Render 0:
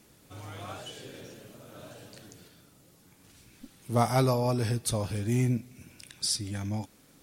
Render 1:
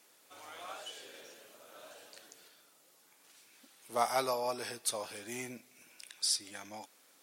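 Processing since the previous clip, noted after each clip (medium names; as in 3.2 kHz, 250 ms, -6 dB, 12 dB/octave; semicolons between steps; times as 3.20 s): high-pass 600 Hz 12 dB/octave; trim -2 dB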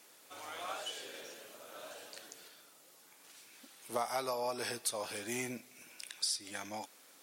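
compression 6:1, threshold -36 dBFS, peak gain reduction 11.5 dB; trim +4 dB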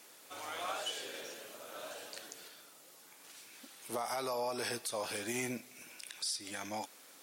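peak limiter -30 dBFS, peak gain reduction 10 dB; trim +3 dB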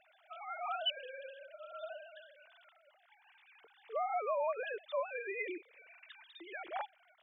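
formants replaced by sine waves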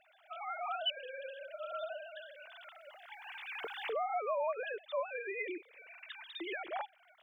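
recorder AGC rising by 10 dB/s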